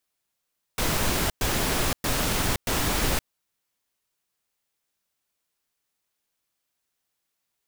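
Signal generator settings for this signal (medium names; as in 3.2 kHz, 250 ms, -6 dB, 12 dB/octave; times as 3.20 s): noise bursts pink, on 0.52 s, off 0.11 s, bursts 4, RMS -24.5 dBFS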